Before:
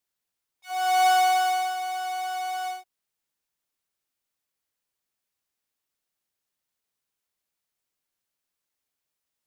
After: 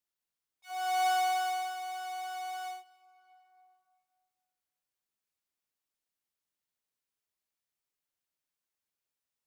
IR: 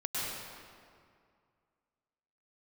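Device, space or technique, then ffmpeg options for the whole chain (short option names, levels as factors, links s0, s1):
ducked reverb: -filter_complex "[0:a]asplit=3[s0][s1][s2];[1:a]atrim=start_sample=2205[s3];[s1][s3]afir=irnorm=-1:irlink=0[s4];[s2]apad=whole_len=417557[s5];[s4][s5]sidechaincompress=threshold=0.00562:ratio=4:attack=16:release=669,volume=0.237[s6];[s0][s6]amix=inputs=2:normalize=0,volume=0.376"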